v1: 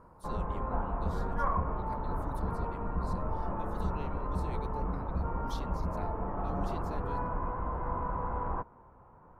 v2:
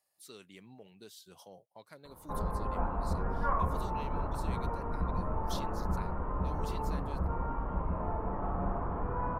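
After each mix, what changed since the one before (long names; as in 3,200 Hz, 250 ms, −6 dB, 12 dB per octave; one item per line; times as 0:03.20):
speech: add spectral tilt +2.5 dB per octave
background: entry +2.05 s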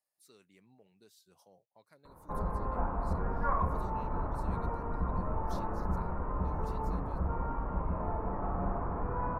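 speech −9.5 dB
master: add parametric band 3,200 Hz −9 dB 0.29 octaves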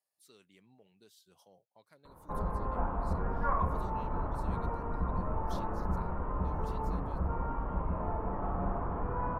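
master: add parametric band 3,200 Hz +9 dB 0.29 octaves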